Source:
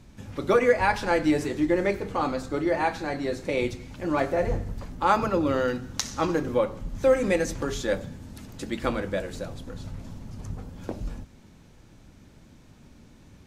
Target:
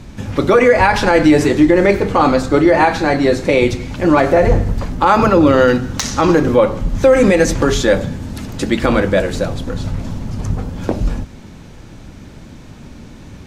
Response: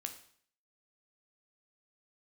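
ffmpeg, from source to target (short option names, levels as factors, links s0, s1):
-filter_complex "[0:a]highshelf=f=8200:g=-6.5,acrossover=split=2700[s0][s1];[s1]asoftclip=type=hard:threshold=0.0891[s2];[s0][s2]amix=inputs=2:normalize=0,alimiter=level_in=7.08:limit=0.891:release=50:level=0:latency=1,volume=0.891"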